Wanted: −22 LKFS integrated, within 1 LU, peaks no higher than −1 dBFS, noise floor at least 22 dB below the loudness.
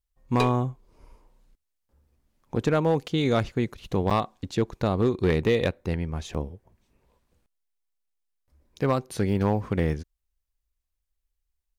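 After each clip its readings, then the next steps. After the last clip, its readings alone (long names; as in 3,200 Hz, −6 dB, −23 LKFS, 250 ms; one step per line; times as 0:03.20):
share of clipped samples 0.6%; peaks flattened at −15.0 dBFS; number of dropouts 2; longest dropout 7.1 ms; integrated loudness −26.5 LKFS; sample peak −15.0 dBFS; target loudness −22.0 LKFS
→ clipped peaks rebuilt −15 dBFS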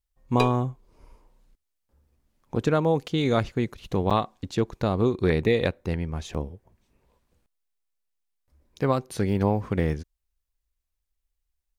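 share of clipped samples 0.0%; number of dropouts 2; longest dropout 7.1 ms
→ repair the gap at 0:04.10/0:06.34, 7.1 ms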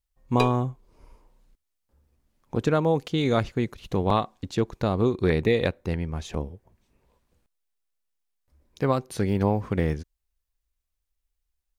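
number of dropouts 0; integrated loudness −26.0 LKFS; sample peak −8.0 dBFS; target loudness −22.0 LKFS
→ level +4 dB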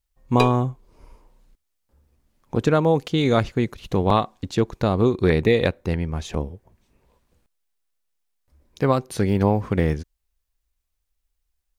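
integrated loudness −22.0 LKFS; sample peak −4.0 dBFS; background noise floor −76 dBFS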